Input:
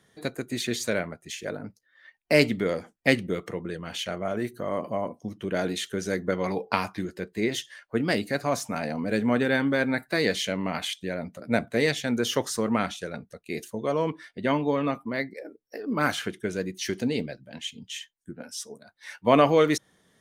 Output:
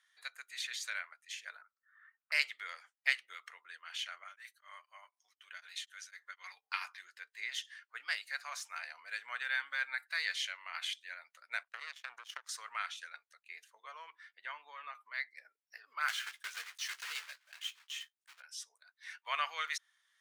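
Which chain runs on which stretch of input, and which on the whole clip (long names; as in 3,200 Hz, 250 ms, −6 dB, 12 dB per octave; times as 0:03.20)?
0:01.62–0:02.32: downward compressor 2.5 to 1, threshold −55 dBFS + low-pass with resonance 1,300 Hz, resonance Q 5.4
0:04.24–0:06.81: high-pass filter 1,400 Hz 6 dB per octave + comb filter 6.6 ms, depth 34% + tremolo along a rectified sine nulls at 4 Hz
0:11.63–0:12.49: parametric band 360 Hz +14.5 dB 2.8 octaves + downward compressor 10 to 1, threshold −18 dBFS + power curve on the samples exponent 2
0:13.42–0:14.95: high-shelf EQ 2,100 Hz −11 dB + multiband upward and downward compressor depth 40%
0:16.08–0:18.42: one scale factor per block 3 bits + double-tracking delay 15 ms −9.5 dB
whole clip: high-pass filter 1,300 Hz 24 dB per octave; high-shelf EQ 7,600 Hz −11 dB; level −5 dB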